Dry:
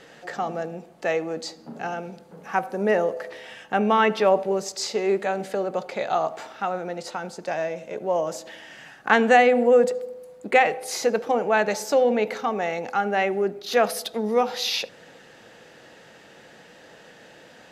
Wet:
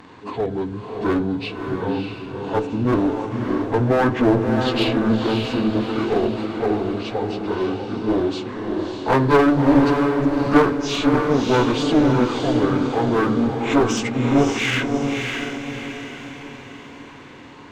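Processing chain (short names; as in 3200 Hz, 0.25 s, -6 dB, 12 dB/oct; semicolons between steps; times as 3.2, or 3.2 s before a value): pitch shift by moving bins -9.5 st; one-sided clip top -25.5 dBFS; diffused feedback echo 0.605 s, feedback 48%, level -4 dB; gain +6 dB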